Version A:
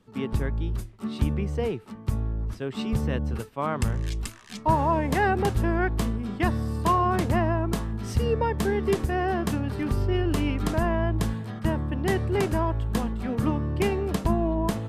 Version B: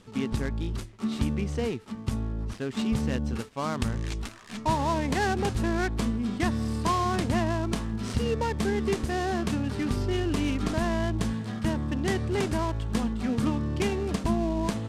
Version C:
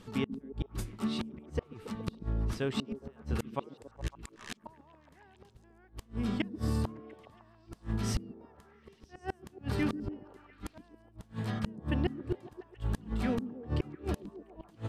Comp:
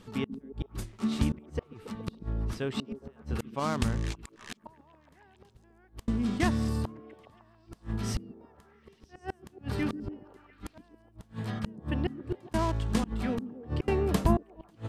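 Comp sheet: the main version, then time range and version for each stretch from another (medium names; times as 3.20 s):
C
0.82–1.32 s: from B
3.59–4.13 s: from B, crossfade 0.06 s
6.08–6.69 s: from B
12.54–13.04 s: from B
13.88–14.37 s: from A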